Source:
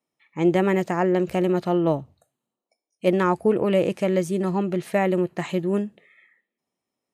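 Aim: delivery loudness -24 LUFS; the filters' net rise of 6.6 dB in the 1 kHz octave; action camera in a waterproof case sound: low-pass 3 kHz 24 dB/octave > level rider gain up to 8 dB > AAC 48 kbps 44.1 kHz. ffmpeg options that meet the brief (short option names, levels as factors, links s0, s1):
-af "lowpass=f=3000:w=0.5412,lowpass=f=3000:w=1.3066,equalizer=f=1000:t=o:g=8.5,dynaudnorm=m=2.51,volume=0.708" -ar 44100 -c:a aac -b:a 48k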